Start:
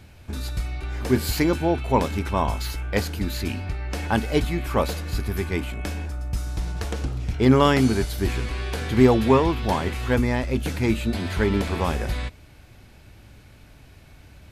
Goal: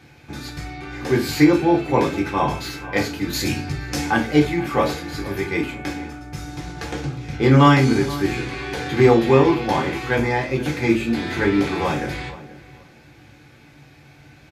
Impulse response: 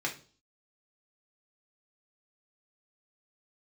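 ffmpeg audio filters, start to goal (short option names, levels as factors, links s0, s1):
-filter_complex "[0:a]asettb=1/sr,asplit=3[s0][s1][s2];[s0]atrim=end=3.334[s3];[s1]atrim=start=3.33:end=4.1,asetpts=PTS-STARTPTS,afade=t=in:d=0.004:c=qsin,afade=t=out:st=0.766:d=0.004:c=qsin,bass=f=250:g=6,treble=f=4000:g=12[s4];[s2]atrim=start=4.096[s5];[s3][s4]acrossfade=d=0.004:c1=hsin:c2=qsin[s6];[s6][s5]acrossfade=d=0.004:c1=qsin:c2=hsin,asplit=2[s7][s8];[s8]adelay=476,lowpass=f=1700:p=1,volume=0.158,asplit=2[s9][s10];[s10]adelay=476,lowpass=f=1700:p=1,volume=0.25[s11];[s7][s9][s11]amix=inputs=3:normalize=0[s12];[1:a]atrim=start_sample=2205,afade=t=out:st=0.17:d=0.01,atrim=end_sample=7938[s13];[s12][s13]afir=irnorm=-1:irlink=0,volume=0.891"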